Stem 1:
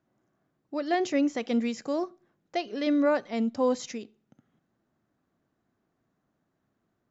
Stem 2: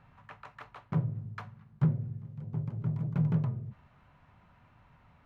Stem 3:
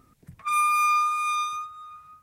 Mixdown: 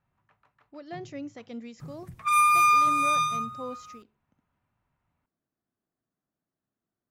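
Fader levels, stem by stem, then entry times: -13.0, -17.5, +2.0 dB; 0.00, 0.00, 1.80 s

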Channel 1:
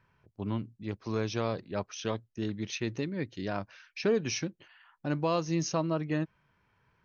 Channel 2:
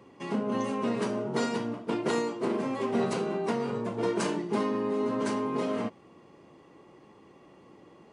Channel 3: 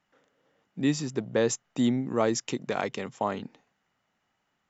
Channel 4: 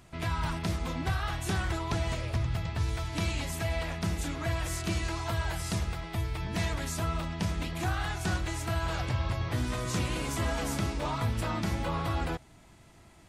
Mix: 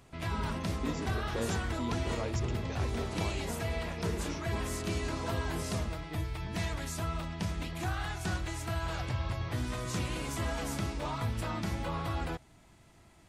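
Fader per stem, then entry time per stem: -15.0, -12.0, -13.5, -3.5 dB; 0.00, 0.00, 0.00, 0.00 s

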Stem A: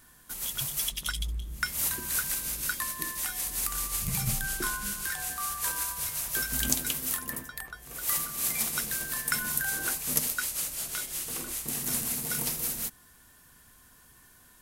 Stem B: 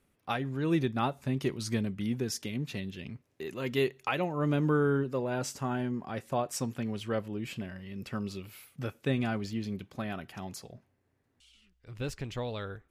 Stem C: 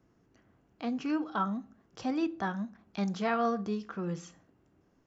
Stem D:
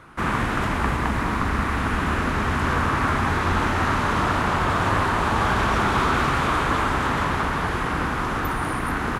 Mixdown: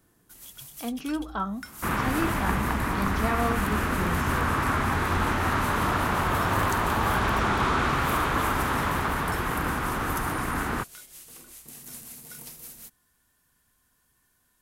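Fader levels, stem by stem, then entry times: -12.0 dB, off, +1.0 dB, -3.5 dB; 0.00 s, off, 0.00 s, 1.65 s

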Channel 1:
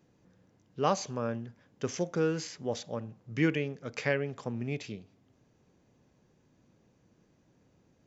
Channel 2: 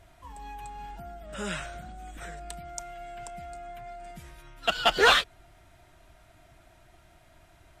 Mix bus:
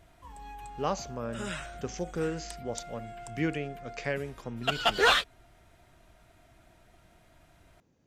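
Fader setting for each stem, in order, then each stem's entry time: -3.0, -3.0 dB; 0.00, 0.00 s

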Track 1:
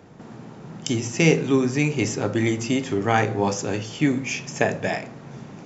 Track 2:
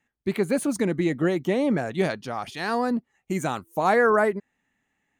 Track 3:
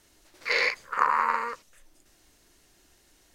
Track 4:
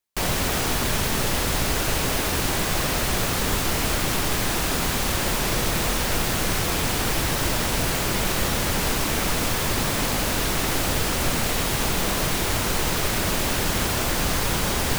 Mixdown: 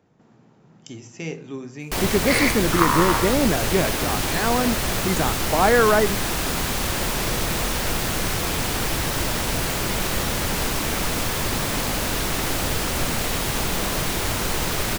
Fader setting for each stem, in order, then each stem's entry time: -14.0, +2.5, +2.5, -0.5 dB; 0.00, 1.75, 1.80, 1.75 s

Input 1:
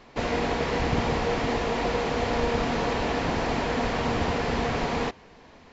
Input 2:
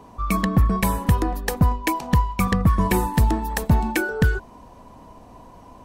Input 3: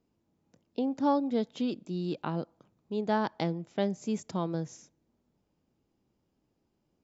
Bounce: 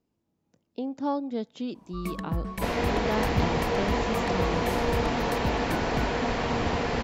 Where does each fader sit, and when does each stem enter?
-1.0, -13.5, -2.0 dB; 2.45, 1.75, 0.00 s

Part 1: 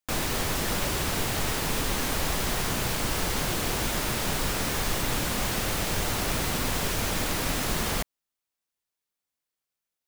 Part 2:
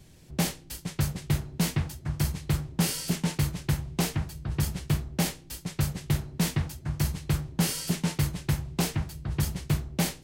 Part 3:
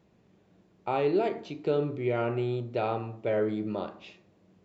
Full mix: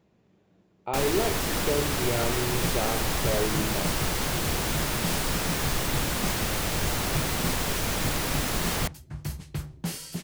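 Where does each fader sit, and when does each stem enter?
0.0, -6.5, -1.0 dB; 0.85, 2.25, 0.00 s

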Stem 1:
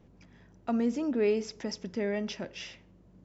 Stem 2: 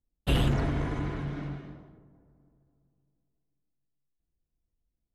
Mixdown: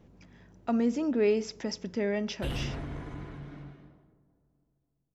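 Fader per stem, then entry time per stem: +1.5, -9.0 dB; 0.00, 2.15 s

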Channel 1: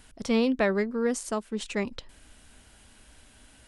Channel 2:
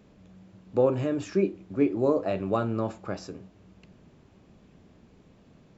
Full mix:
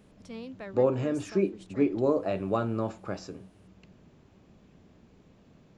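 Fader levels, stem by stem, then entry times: -17.5, -1.5 dB; 0.00, 0.00 s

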